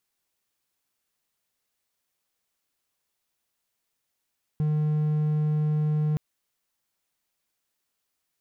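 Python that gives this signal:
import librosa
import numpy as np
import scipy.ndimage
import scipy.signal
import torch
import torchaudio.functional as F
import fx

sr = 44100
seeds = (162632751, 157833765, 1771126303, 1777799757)

y = 10.0 ** (-19.5 / 20.0) * (1.0 - 4.0 * np.abs(np.mod(152.0 * (np.arange(round(1.57 * sr)) / sr) + 0.25, 1.0) - 0.5))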